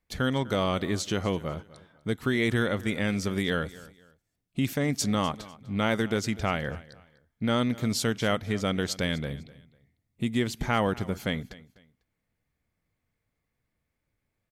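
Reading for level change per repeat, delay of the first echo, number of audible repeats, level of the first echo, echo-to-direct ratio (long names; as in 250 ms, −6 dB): −11.0 dB, 249 ms, 2, −19.5 dB, −19.0 dB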